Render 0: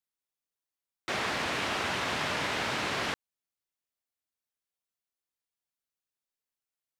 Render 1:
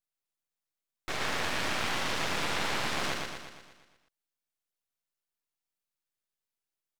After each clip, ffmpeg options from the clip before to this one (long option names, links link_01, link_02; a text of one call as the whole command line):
ffmpeg -i in.wav -filter_complex "[0:a]asplit=2[link_01][link_02];[link_02]aecho=0:1:118|236|354|472|590|708|826|944:0.708|0.396|0.222|0.124|0.0696|0.039|0.0218|0.0122[link_03];[link_01][link_03]amix=inputs=2:normalize=0,aeval=exprs='max(val(0),0)':channel_layout=same,volume=1.5dB" out.wav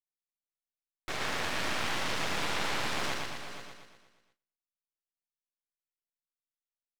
ffmpeg -i in.wav -af "agate=range=-18dB:threshold=-60dB:ratio=16:detection=peak,aecho=1:1:462|479:0.15|0.211,volume=-1.5dB" out.wav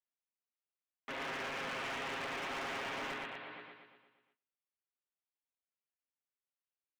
ffmpeg -i in.wav -af "highpass=frequency=310:width_type=q:width=0.5412,highpass=frequency=310:width_type=q:width=1.307,lowpass=frequency=3300:width_type=q:width=0.5176,lowpass=frequency=3300:width_type=q:width=0.7071,lowpass=frequency=3300:width_type=q:width=1.932,afreqshift=-110,aecho=1:1:7.4:0.64,volume=33dB,asoftclip=hard,volume=-33dB,volume=-4dB" out.wav